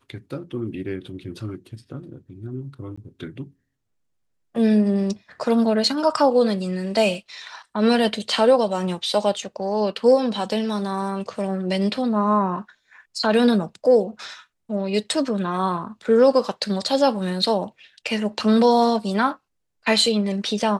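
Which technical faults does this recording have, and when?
2.96–2.98 gap 15 ms

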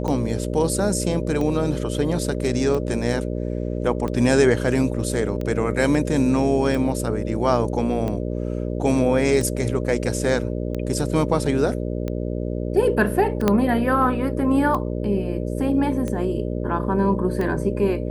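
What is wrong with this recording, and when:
buzz 60 Hz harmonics 10 -26 dBFS
tick 45 rpm -16 dBFS
13.48 pop -5 dBFS

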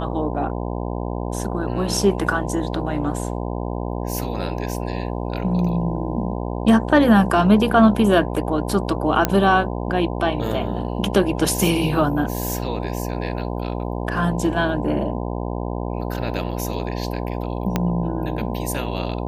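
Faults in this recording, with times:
buzz 60 Hz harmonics 17 -26 dBFS
9.25 pop -2 dBFS
17.76 pop -6 dBFS

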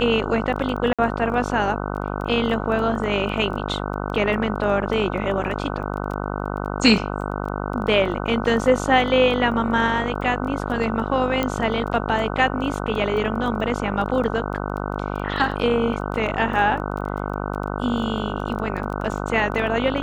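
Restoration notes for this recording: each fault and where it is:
buzz 50 Hz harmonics 30 -27 dBFS
crackle 11/s -29 dBFS
0.93–0.99 gap 56 ms
11.43 pop -9 dBFS

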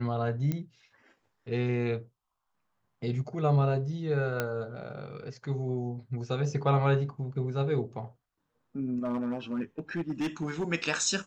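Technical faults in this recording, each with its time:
0.52 pop -19 dBFS
4.4 pop -14 dBFS
9.05–10.64 clipped -26.5 dBFS

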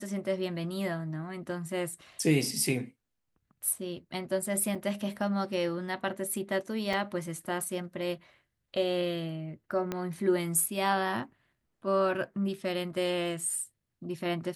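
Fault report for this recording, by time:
4.75 gap 4.8 ms
6.93 gap 4.4 ms
9.92 pop -18 dBFS

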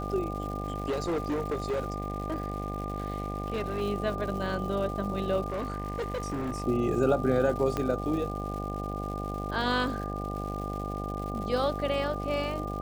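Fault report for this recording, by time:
buzz 50 Hz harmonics 16 -35 dBFS
crackle 280/s -38 dBFS
tone 1200 Hz -37 dBFS
0.62–3.82 clipped -26 dBFS
5.5–6.62 clipped -28.5 dBFS
7.77 pop -16 dBFS

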